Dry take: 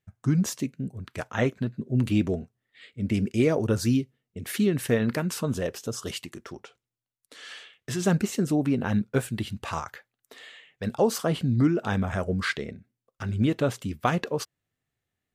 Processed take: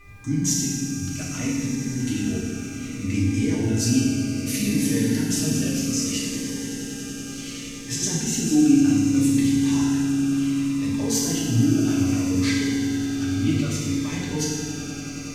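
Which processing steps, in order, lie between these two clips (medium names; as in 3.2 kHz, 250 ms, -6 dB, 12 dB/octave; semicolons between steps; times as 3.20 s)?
peak limiter -17.5 dBFS, peak gain reduction 8.5 dB; fifteen-band graphic EQ 100 Hz +7 dB, 250 Hz +10 dB, 2.5 kHz +6 dB, 6.3 kHz +11 dB; mains buzz 400 Hz, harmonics 6, -45 dBFS -1 dB/octave; flange 0.25 Hz, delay 7.5 ms, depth 7 ms, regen +62%; added noise brown -46 dBFS; treble shelf 2.2 kHz +9 dB; band-stop 500 Hz, Q 12; echo with a slow build-up 94 ms, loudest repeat 8, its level -17.5 dB; FDN reverb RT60 1.7 s, low-frequency decay 1.35×, high-frequency decay 0.9×, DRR -5.5 dB; Shepard-style phaser falling 0.65 Hz; trim -6.5 dB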